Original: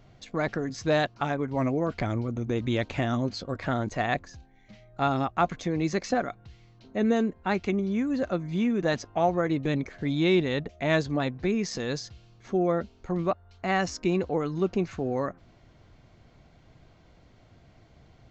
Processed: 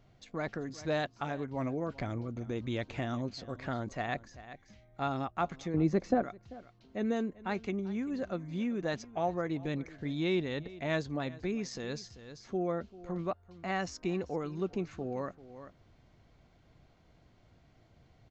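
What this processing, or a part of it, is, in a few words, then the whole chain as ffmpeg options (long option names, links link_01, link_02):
ducked delay: -filter_complex "[0:a]asettb=1/sr,asplit=3[link_01][link_02][link_03];[link_01]atrim=end=5.744[link_04];[link_02]atrim=start=5.74:end=6.23,asetpts=PTS-STARTPTS,afade=type=in:duration=0.004:curve=qsin,afade=type=out:start_time=0.486:duration=0.004:curve=qsin,tiltshelf=frequency=1300:gain=8.5[link_05];[link_03]atrim=start=6.226[link_06];[link_04][link_05]acrossfade=duration=0.004:curve1=hsin:curve2=qsin[link_07];[link_07][link_06]acrossfade=duration=0.004:curve1=qsin:curve2=hsin,asplit=3[link_08][link_09][link_10];[link_09]adelay=390,volume=-5dB[link_11];[link_10]apad=whole_len=824431[link_12];[link_11][link_12]sidechaincompress=threshold=-40dB:ratio=8:attack=49:release=625[link_13];[link_08][link_13]amix=inputs=2:normalize=0,volume=-8dB"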